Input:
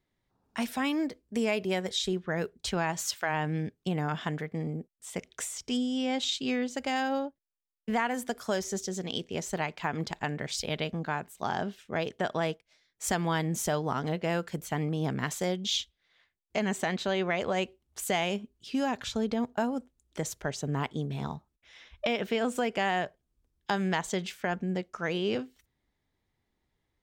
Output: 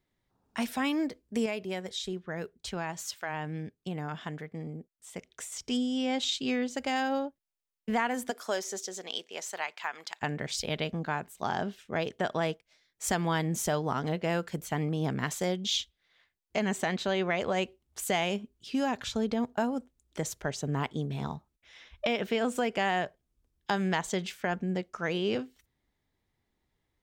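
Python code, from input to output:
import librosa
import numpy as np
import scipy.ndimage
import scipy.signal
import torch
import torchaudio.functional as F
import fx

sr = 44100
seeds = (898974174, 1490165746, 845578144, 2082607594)

y = fx.highpass(x, sr, hz=fx.line((8.3, 320.0), (10.21, 1200.0)), slope=12, at=(8.3, 10.21), fade=0.02)
y = fx.edit(y, sr, fx.clip_gain(start_s=1.46, length_s=4.06, db=-5.5), tone=tone)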